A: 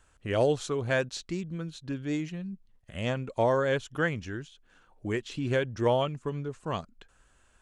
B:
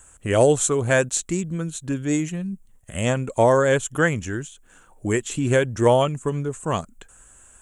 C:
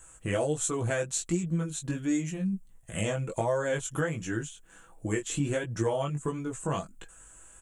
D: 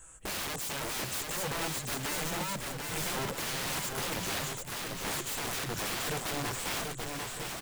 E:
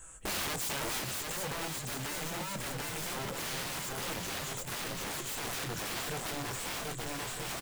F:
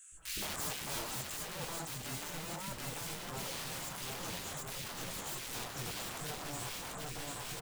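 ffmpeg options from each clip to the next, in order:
-af "highshelf=f=6100:t=q:w=3:g=9,volume=2.66"
-af "aecho=1:1:6.1:0.41,acompressor=threshold=0.0708:ratio=6,flanger=delay=17:depth=4.4:speed=1.4"
-af "aeval=exprs='(mod(35.5*val(0)+1,2)-1)/35.5':c=same,aecho=1:1:740|1295|1711|2023|2258:0.631|0.398|0.251|0.158|0.1"
-filter_complex "[0:a]alimiter=level_in=2.37:limit=0.0631:level=0:latency=1,volume=0.422,asplit=2[s0][s1];[s1]adelay=24,volume=0.251[s2];[s0][s2]amix=inputs=2:normalize=0,volume=1.19"
-filter_complex "[0:a]acrossover=split=380|1800[s0][s1][s2];[s0]adelay=120[s3];[s1]adelay=170[s4];[s3][s4][s2]amix=inputs=3:normalize=0,volume=0.668"

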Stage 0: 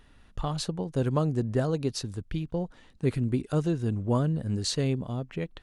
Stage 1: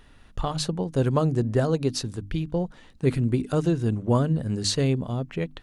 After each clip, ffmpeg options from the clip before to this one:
-af "bandreject=f=50:t=h:w=6,bandreject=f=100:t=h:w=6,bandreject=f=150:t=h:w=6,bandreject=f=200:t=h:w=6,bandreject=f=250:t=h:w=6,bandreject=f=300:t=h:w=6,volume=1.68"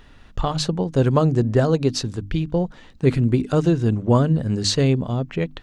-af "equalizer=f=10000:t=o:w=0.37:g=-12.5,volume=1.78"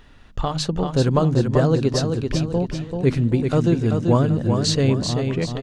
-af "aecho=1:1:387|774|1161|1548|1935:0.531|0.218|0.0892|0.0366|0.015,volume=0.891"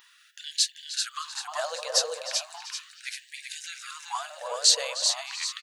-filter_complex "[0:a]asplit=2[s0][s1];[s1]adelay=309,lowpass=f=2900:p=1,volume=0.376,asplit=2[s2][s3];[s3]adelay=309,lowpass=f=2900:p=1,volume=0.51,asplit=2[s4][s5];[s5]adelay=309,lowpass=f=2900:p=1,volume=0.51,asplit=2[s6][s7];[s7]adelay=309,lowpass=f=2900:p=1,volume=0.51,asplit=2[s8][s9];[s9]adelay=309,lowpass=f=2900:p=1,volume=0.51,asplit=2[s10][s11];[s11]adelay=309,lowpass=f=2900:p=1,volume=0.51[s12];[s0][s2][s4][s6][s8][s10][s12]amix=inputs=7:normalize=0,crystalizer=i=5:c=0,afftfilt=real='re*gte(b*sr/1024,440*pow(1600/440,0.5+0.5*sin(2*PI*0.37*pts/sr)))':imag='im*gte(b*sr/1024,440*pow(1600/440,0.5+0.5*sin(2*PI*0.37*pts/sr)))':win_size=1024:overlap=0.75,volume=0.422"

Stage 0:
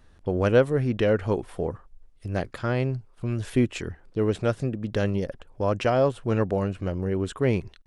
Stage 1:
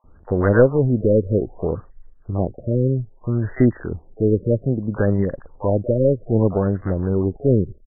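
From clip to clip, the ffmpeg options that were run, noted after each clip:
-filter_complex "[0:a]aeval=exprs='0.355*(cos(1*acos(clip(val(0)/0.355,-1,1)))-cos(1*PI/2))+0.02*(cos(4*acos(clip(val(0)/0.355,-1,1)))-cos(4*PI/2))':c=same,acrossover=split=800|5200[s0][s1][s2];[s0]adelay=40[s3];[s2]adelay=720[s4];[s3][s1][s4]amix=inputs=3:normalize=0,afftfilt=real='re*lt(b*sr/1024,590*pow(2100/590,0.5+0.5*sin(2*PI*0.62*pts/sr)))':imag='im*lt(b*sr/1024,590*pow(2100/590,0.5+0.5*sin(2*PI*0.62*pts/sr)))':win_size=1024:overlap=0.75,volume=2.11"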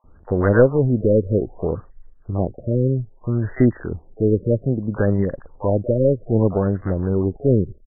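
-af anull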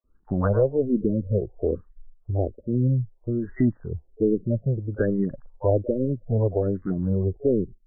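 -filter_complex "[0:a]afftdn=nr=16:nf=-25,alimiter=limit=0.376:level=0:latency=1:release=381,asplit=2[s0][s1];[s1]afreqshift=-1.2[s2];[s0][s2]amix=inputs=2:normalize=1"

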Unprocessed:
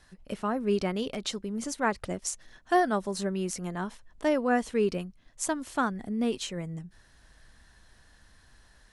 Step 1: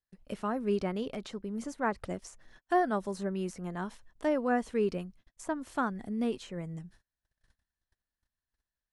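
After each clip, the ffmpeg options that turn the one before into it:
-filter_complex "[0:a]agate=range=0.0224:threshold=0.00282:ratio=16:detection=peak,acrossover=split=2000[s0][s1];[s1]acompressor=threshold=0.00447:ratio=5[s2];[s0][s2]amix=inputs=2:normalize=0,volume=0.708"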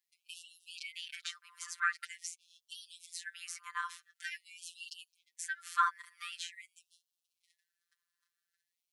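-af "afftfilt=real='hypot(re,im)*cos(PI*b)':imag='0':win_size=1024:overlap=0.75,afftfilt=real='re*gte(b*sr/1024,960*pow(2700/960,0.5+0.5*sin(2*PI*0.46*pts/sr)))':imag='im*gte(b*sr/1024,960*pow(2700/960,0.5+0.5*sin(2*PI*0.46*pts/sr)))':win_size=1024:overlap=0.75,volume=2.99"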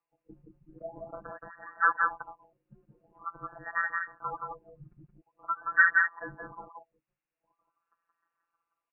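-filter_complex "[0:a]asplit=2[s0][s1];[s1]aecho=0:1:174:0.708[s2];[s0][s2]amix=inputs=2:normalize=0,lowpass=f=2500:t=q:w=0.5098,lowpass=f=2500:t=q:w=0.6013,lowpass=f=2500:t=q:w=0.9,lowpass=f=2500:t=q:w=2.563,afreqshift=-2900,volume=2.37"

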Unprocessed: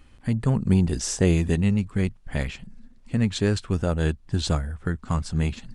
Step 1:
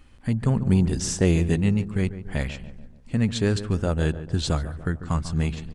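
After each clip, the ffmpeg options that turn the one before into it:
-filter_complex "[0:a]asplit=2[s0][s1];[s1]adelay=144,lowpass=f=1400:p=1,volume=0.251,asplit=2[s2][s3];[s3]adelay=144,lowpass=f=1400:p=1,volume=0.53,asplit=2[s4][s5];[s5]adelay=144,lowpass=f=1400:p=1,volume=0.53,asplit=2[s6][s7];[s7]adelay=144,lowpass=f=1400:p=1,volume=0.53,asplit=2[s8][s9];[s9]adelay=144,lowpass=f=1400:p=1,volume=0.53,asplit=2[s10][s11];[s11]adelay=144,lowpass=f=1400:p=1,volume=0.53[s12];[s0][s2][s4][s6][s8][s10][s12]amix=inputs=7:normalize=0"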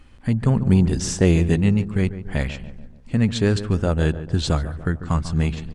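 -af "highshelf=f=7600:g=-6,volume=1.5"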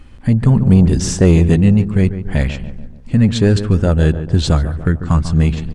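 -af "lowshelf=f=450:g=4.5,acontrast=45,volume=0.891"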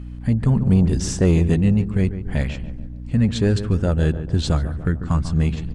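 -af "aeval=exprs='val(0)+0.0501*(sin(2*PI*60*n/s)+sin(2*PI*2*60*n/s)/2+sin(2*PI*3*60*n/s)/3+sin(2*PI*4*60*n/s)/4+sin(2*PI*5*60*n/s)/5)':c=same,volume=0.501"

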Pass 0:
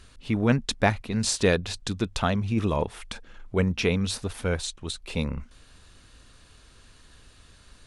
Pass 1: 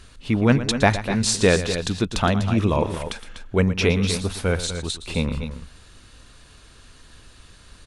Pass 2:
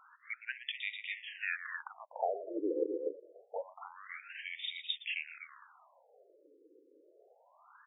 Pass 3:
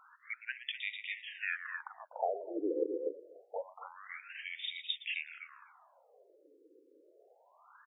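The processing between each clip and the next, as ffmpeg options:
-af "aecho=1:1:115|246|258:0.211|0.282|0.141,volume=1.68"
-af "acompressor=threshold=0.0708:ratio=6,afftfilt=real='re*between(b*sr/1024,380*pow(2700/380,0.5+0.5*sin(2*PI*0.26*pts/sr))/1.41,380*pow(2700/380,0.5+0.5*sin(2*PI*0.26*pts/sr))*1.41)':imag='im*between(b*sr/1024,380*pow(2700/380,0.5+0.5*sin(2*PI*0.26*pts/sr))/1.41,380*pow(2700/380,0.5+0.5*sin(2*PI*0.26*pts/sr))*1.41)':win_size=1024:overlap=0.75"
-af "aecho=1:1:254:0.0668"

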